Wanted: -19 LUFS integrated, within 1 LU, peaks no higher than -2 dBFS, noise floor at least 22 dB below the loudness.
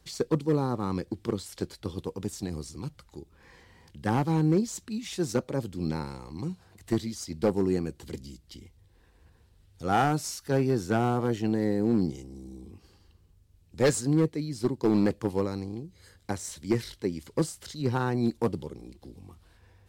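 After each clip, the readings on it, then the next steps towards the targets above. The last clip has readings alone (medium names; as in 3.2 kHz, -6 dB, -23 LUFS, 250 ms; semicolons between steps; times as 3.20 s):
clipped samples 0.6%; clipping level -16.5 dBFS; loudness -29.5 LUFS; peak level -16.5 dBFS; loudness target -19.0 LUFS
-> clip repair -16.5 dBFS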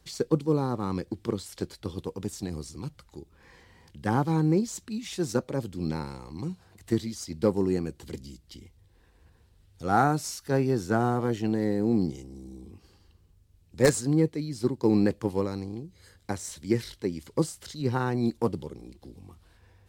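clipped samples 0.0%; loudness -28.5 LUFS; peak level -7.5 dBFS; loudness target -19.0 LUFS
-> trim +9.5 dB; peak limiter -2 dBFS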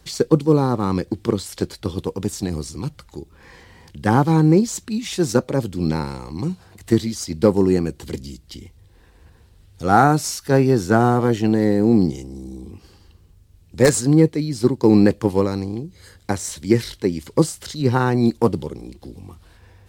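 loudness -19.5 LUFS; peak level -2.0 dBFS; noise floor -52 dBFS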